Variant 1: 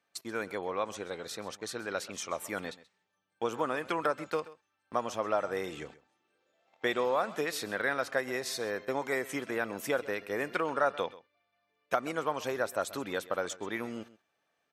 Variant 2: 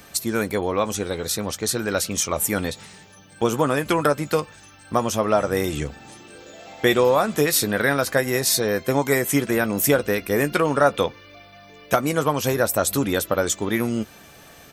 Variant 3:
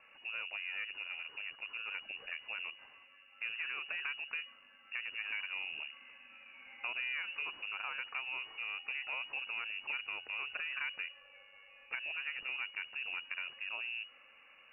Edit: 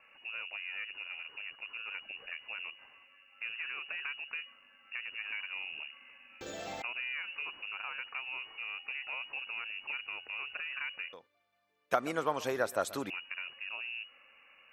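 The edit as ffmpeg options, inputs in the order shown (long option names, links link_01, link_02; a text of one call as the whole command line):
ffmpeg -i take0.wav -i take1.wav -i take2.wav -filter_complex "[2:a]asplit=3[link_01][link_02][link_03];[link_01]atrim=end=6.412[link_04];[1:a]atrim=start=6.408:end=6.822[link_05];[link_02]atrim=start=6.818:end=11.132[link_06];[0:a]atrim=start=11.128:end=13.102[link_07];[link_03]atrim=start=13.098[link_08];[link_04][link_05]acrossfade=duration=0.004:curve1=hsin:curve2=hsin[link_09];[link_09][link_06]acrossfade=duration=0.004:curve1=hsin:curve2=hsin[link_10];[link_10][link_07]acrossfade=duration=0.004:curve1=hsin:curve2=hsin[link_11];[link_11][link_08]acrossfade=duration=0.004:curve1=hsin:curve2=hsin" out.wav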